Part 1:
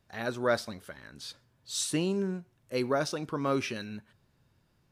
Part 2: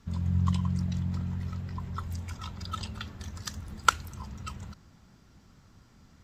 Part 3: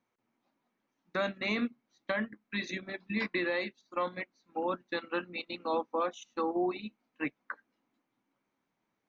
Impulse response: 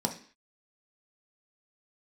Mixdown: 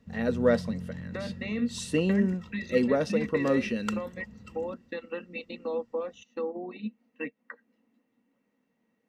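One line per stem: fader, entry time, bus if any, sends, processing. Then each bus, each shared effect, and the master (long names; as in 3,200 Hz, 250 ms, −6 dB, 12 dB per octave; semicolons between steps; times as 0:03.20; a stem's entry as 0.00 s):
−4.5 dB, 0.00 s, no send, high-shelf EQ 11,000 Hz −10 dB
−14.5 dB, 0.00 s, no send, no processing
−1.5 dB, 0.00 s, no send, downward compressor 2.5 to 1, threshold −43 dBFS, peak gain reduction 11 dB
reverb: not used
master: hollow resonant body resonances 230/470/1,900/2,700 Hz, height 16 dB, ringing for 45 ms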